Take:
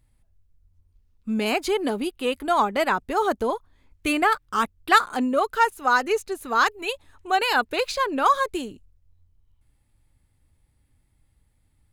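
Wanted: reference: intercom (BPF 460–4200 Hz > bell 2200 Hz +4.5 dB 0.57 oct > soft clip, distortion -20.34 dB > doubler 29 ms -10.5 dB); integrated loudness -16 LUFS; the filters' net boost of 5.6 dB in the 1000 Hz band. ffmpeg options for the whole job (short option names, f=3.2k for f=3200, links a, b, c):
-filter_complex "[0:a]highpass=460,lowpass=4.2k,equalizer=f=1k:t=o:g=7,equalizer=f=2.2k:t=o:w=0.57:g=4.5,asoftclip=threshold=-4.5dB,asplit=2[a][b];[b]adelay=29,volume=-10.5dB[c];[a][c]amix=inputs=2:normalize=0,volume=4dB"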